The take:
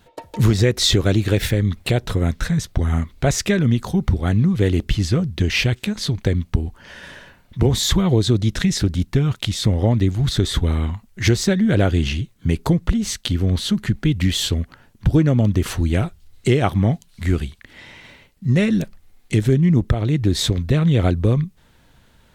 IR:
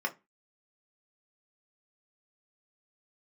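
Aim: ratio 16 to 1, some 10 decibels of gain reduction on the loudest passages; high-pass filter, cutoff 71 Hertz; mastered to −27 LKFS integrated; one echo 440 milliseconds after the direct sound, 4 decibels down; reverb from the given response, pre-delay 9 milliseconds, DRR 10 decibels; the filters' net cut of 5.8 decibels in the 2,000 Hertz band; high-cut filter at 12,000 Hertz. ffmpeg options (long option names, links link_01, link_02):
-filter_complex "[0:a]highpass=71,lowpass=12000,equalizer=frequency=2000:width_type=o:gain=-7.5,acompressor=threshold=-22dB:ratio=16,aecho=1:1:440:0.631,asplit=2[link_01][link_02];[1:a]atrim=start_sample=2205,adelay=9[link_03];[link_02][link_03]afir=irnorm=-1:irlink=0,volume=-16dB[link_04];[link_01][link_04]amix=inputs=2:normalize=0,volume=-0.5dB"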